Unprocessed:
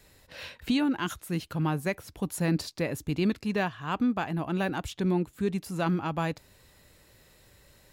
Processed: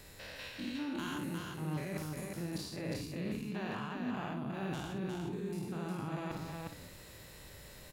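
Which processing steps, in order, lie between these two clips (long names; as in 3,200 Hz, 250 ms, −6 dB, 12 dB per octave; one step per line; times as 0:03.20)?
spectrum averaged block by block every 200 ms
reversed playback
downward compressor 5 to 1, threshold −45 dBFS, peak gain reduction 17.5 dB
reversed playback
multi-tap delay 52/358/417 ms −6.5/−3.5/−13 dB
level +5 dB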